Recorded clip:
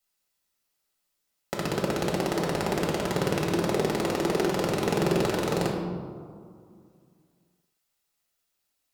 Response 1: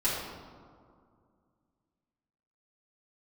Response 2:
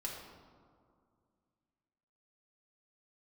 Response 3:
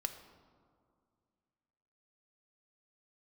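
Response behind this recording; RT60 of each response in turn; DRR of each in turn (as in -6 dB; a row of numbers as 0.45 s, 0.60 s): 2; 2.2 s, 2.2 s, 2.2 s; -10.0 dB, -3.0 dB, 7.0 dB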